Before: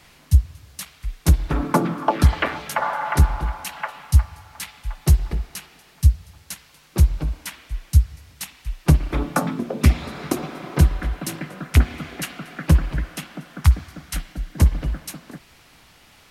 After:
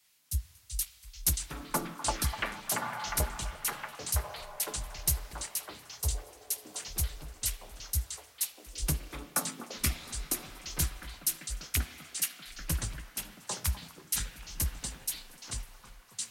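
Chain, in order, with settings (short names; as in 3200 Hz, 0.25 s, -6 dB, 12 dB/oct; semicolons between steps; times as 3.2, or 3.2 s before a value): pre-emphasis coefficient 0.9; echoes that change speed 0.254 s, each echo -6 st, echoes 3, each echo -6 dB; on a send: delay with a stepping band-pass 0.251 s, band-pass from 960 Hz, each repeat 0.7 oct, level -8.5 dB; on the sum: three-band expander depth 40%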